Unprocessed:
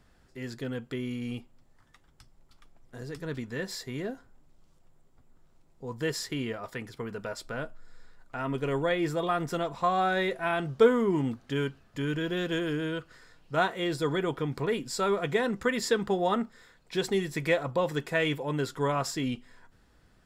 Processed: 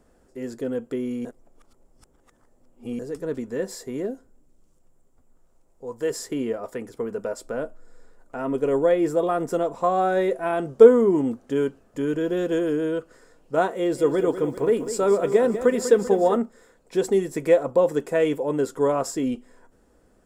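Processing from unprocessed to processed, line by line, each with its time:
1.25–2.99 s: reverse
4.05–6.10 s: peaking EQ 1.1 kHz -> 190 Hz -7.5 dB 2.2 oct
13.75–16.37 s: bit-crushed delay 195 ms, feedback 55%, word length 9-bit, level -11 dB
whole clip: ten-band graphic EQ 125 Hz -7 dB, 250 Hz +5 dB, 500 Hz +9 dB, 2 kHz -4 dB, 4 kHz -9 dB, 8 kHz +6 dB; trim +1 dB

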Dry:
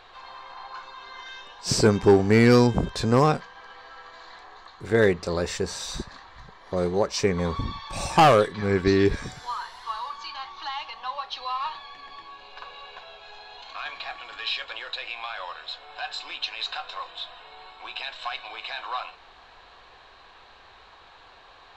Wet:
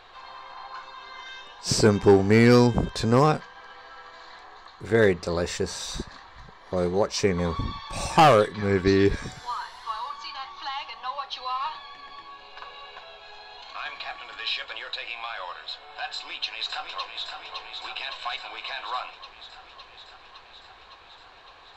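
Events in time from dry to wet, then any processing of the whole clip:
16.13–17.25 s: echo throw 560 ms, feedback 75%, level -6 dB

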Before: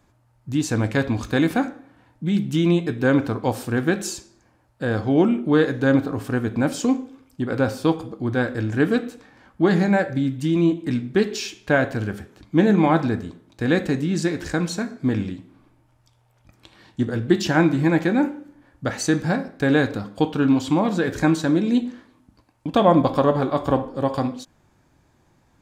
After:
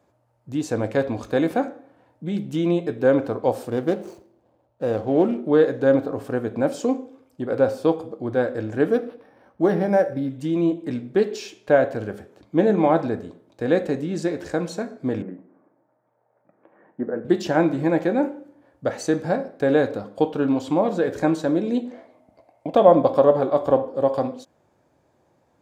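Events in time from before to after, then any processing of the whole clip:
3.70–5.48 s: median filter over 25 samples
8.91–10.30 s: decimation joined by straight lines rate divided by 6×
15.22–17.25 s: elliptic band-pass 160–1800 Hz
21.91–22.75 s: small resonant body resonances 670/2100 Hz, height 15 dB, ringing for 20 ms
whole clip: high-pass 75 Hz; peaking EQ 550 Hz +13 dB 1.3 oct; trim -7.5 dB

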